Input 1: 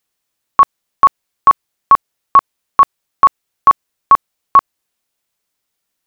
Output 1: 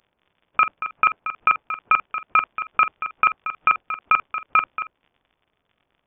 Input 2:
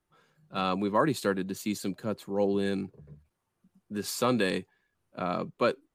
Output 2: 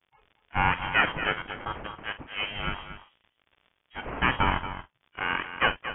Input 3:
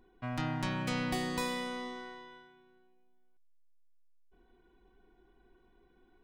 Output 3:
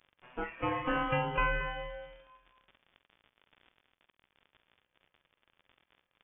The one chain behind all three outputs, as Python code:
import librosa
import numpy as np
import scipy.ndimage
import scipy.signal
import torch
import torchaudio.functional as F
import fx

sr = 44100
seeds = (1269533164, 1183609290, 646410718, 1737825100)

y = fx.lower_of_two(x, sr, delay_ms=0.31)
y = fx.noise_reduce_blind(y, sr, reduce_db=19)
y = scipy.signal.sosfilt(scipy.signal.butter(2, 1300.0, 'highpass', fs=sr, output='sos'), y)
y = fx.high_shelf(y, sr, hz=2200.0, db=10.0)
y = fx.over_compress(y, sr, threshold_db=-22.0, ratio=-1.0)
y = fx.dmg_crackle(y, sr, seeds[0], per_s=49.0, level_db=-50.0)
y = fx.doubler(y, sr, ms=47.0, db=-13)
y = y + 10.0 ** (-11.0 / 20.0) * np.pad(y, (int(230 * sr / 1000.0), 0))[:len(y)]
y = fx.freq_invert(y, sr, carrier_hz=3500)
y = y * librosa.db_to_amplitude(8.0)